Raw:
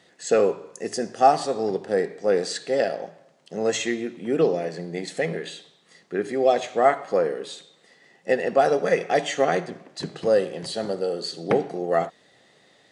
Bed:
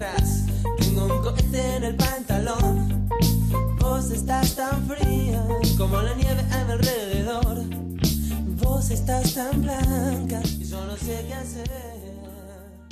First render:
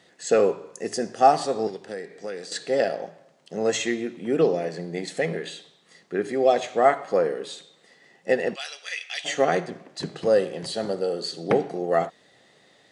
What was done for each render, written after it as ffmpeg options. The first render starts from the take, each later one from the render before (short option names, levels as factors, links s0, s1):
-filter_complex "[0:a]asettb=1/sr,asplit=3[s0][s1][s2];[s0]atrim=end=1.674[s3];[s1]atrim=start=1.67:end=2.52,asetpts=PTS-STARTPTS,afade=t=in:d=0.004:c=qsin,afade=t=out:st=0.846:d=0.004:c=qsin,acrossover=split=690|1400[s4][s5][s6];[s4]acompressor=threshold=0.0178:ratio=4[s7];[s5]acompressor=threshold=0.00316:ratio=4[s8];[s6]acompressor=threshold=0.00794:ratio=4[s9];[s7][s8][s9]amix=inputs=3:normalize=0[s10];[s2]atrim=start=2.516[s11];[s3][s10]acrossfade=d=0.004:c1=hsin:c2=qsin[s12];[s12][s11]acrossfade=d=0.004:c1=qsin:c2=hsin,asplit=3[s13][s14][s15];[s13]afade=t=out:st=8.54:d=0.02[s16];[s14]highpass=f=3000:t=q:w=2.6,afade=t=in:st=8.54:d=0.02,afade=t=out:st=9.24:d=0.02[s17];[s15]afade=t=in:st=9.24:d=0.02[s18];[s16][s17][s18]amix=inputs=3:normalize=0"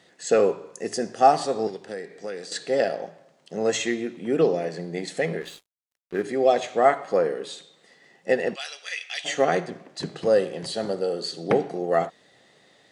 -filter_complex "[0:a]asplit=3[s0][s1][s2];[s0]afade=t=out:st=5.4:d=0.02[s3];[s1]aeval=exprs='sgn(val(0))*max(abs(val(0))-0.00708,0)':c=same,afade=t=in:st=5.4:d=0.02,afade=t=out:st=6.22:d=0.02[s4];[s2]afade=t=in:st=6.22:d=0.02[s5];[s3][s4][s5]amix=inputs=3:normalize=0"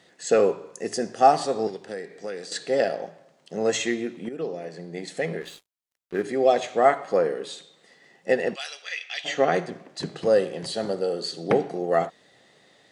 -filter_complex "[0:a]asettb=1/sr,asplit=3[s0][s1][s2];[s0]atrim=end=8.824[s3];[s1]atrim=start=8.82:end=9.55,asetpts=PTS-STARTPTS,afade=t=in:d=0.004:c=qsin,afade=t=out:st=0.726:d=0.004:c=qsin,lowpass=5300[s4];[s2]atrim=start=9.546[s5];[s3][s4]acrossfade=d=0.004:c1=hsin:c2=qsin[s6];[s6][s5]acrossfade=d=0.004:c1=qsin:c2=hsin,asplit=2[s7][s8];[s7]atrim=end=4.29,asetpts=PTS-STARTPTS,afade=t=out:st=4.286:d=0.004:c=hsin:silence=0.199526[s9];[s8]atrim=start=4.29,asetpts=PTS-STARTPTS,afade=t=in:d=1.85:c=qsin:silence=0.199526[s10];[s9][s10]concat=n=2:v=0:a=1"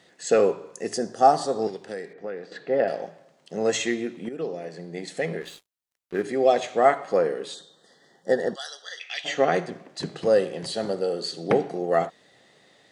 -filter_complex "[0:a]asettb=1/sr,asplit=3[s0][s1][s2];[s0]atrim=end=0.984[s3];[s1]atrim=start=0.98:end=1.62,asetpts=PTS-STARTPTS,afade=t=in:d=0.004:c=qsin,afade=t=out:st=0.636:d=0.004:c=qsin,equalizer=f=2400:t=o:w=0.61:g=-12[s4];[s2]atrim=start=1.616[s5];[s3][s4]acrossfade=d=0.004:c1=hsin:c2=qsin[s6];[s6][s5]acrossfade=d=0.004:c1=qsin:c2=hsin,asettb=1/sr,asplit=3[s7][s8][s9];[s7]atrim=end=2.134[s10];[s8]atrim=start=2.13:end=2.88,asetpts=PTS-STARTPTS,afade=t=in:d=0.004:c=qsin,afade=t=out:st=0.746:d=0.004:c=qsin,lowpass=1900[s11];[s9]atrim=start=2.876[s12];[s10][s11]acrossfade=d=0.004:c1=hsin:c2=qsin[s13];[s13][s12]acrossfade=d=0.004:c1=qsin:c2=hsin,asettb=1/sr,asplit=3[s14][s15][s16];[s14]atrim=end=7.544[s17];[s15]atrim=start=7.54:end=9,asetpts=PTS-STARTPTS,afade=t=in:d=0.004:c=qsin,afade=t=out:st=1.456:d=0.004:c=qsin,asuperstop=centerf=2400:order=8:qfactor=1.9[s18];[s16]atrim=start=8.996[s19];[s17][s18]acrossfade=d=0.004:c1=hsin:c2=qsin[s20];[s20][s19]acrossfade=d=0.004:c1=qsin:c2=hsin"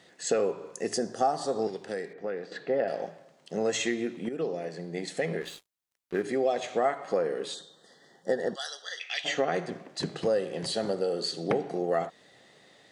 -af "acompressor=threshold=0.0562:ratio=3"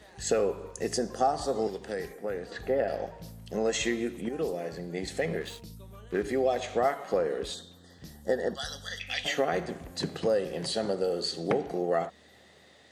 -filter_complex "[1:a]volume=0.0501[s0];[0:a][s0]amix=inputs=2:normalize=0"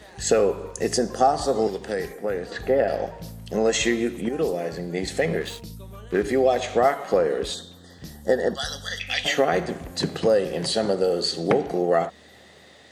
-af "volume=2.24"